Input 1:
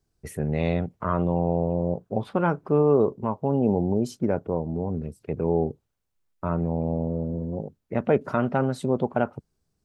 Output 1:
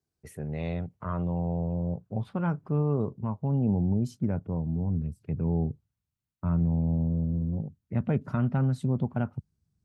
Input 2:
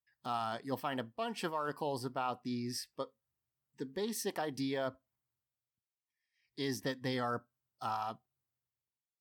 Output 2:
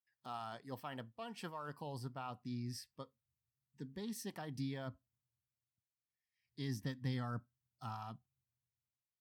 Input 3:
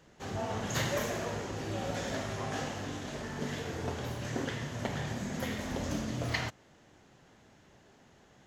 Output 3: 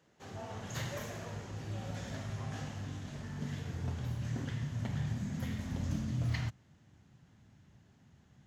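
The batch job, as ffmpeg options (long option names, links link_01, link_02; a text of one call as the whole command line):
ffmpeg -i in.wav -af "highpass=87,asubboost=boost=9:cutoff=150,volume=-8.5dB" out.wav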